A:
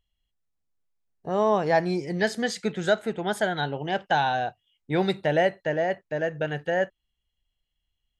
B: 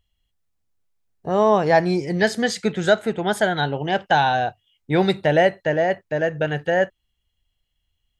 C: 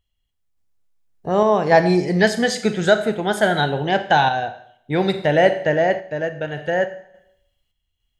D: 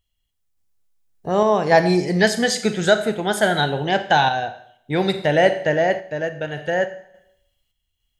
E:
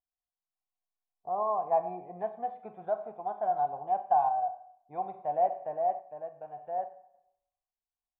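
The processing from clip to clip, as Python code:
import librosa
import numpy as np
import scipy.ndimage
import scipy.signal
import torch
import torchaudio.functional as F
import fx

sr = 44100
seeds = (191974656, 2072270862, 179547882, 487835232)

y1 = fx.peak_eq(x, sr, hz=91.0, db=6.0, octaves=0.57)
y1 = y1 * 10.0 ** (5.5 / 20.0)
y2 = fx.rev_schroeder(y1, sr, rt60_s=0.68, comb_ms=30, drr_db=9.5)
y2 = fx.tremolo_random(y2, sr, seeds[0], hz=3.5, depth_pct=55)
y2 = y2 * 10.0 ** (3.0 / 20.0)
y3 = fx.high_shelf(y2, sr, hz=4100.0, db=6.5)
y3 = y3 * 10.0 ** (-1.0 / 20.0)
y4 = fx.formant_cascade(y3, sr, vowel='a')
y4 = y4 * 10.0 ** (-2.0 / 20.0)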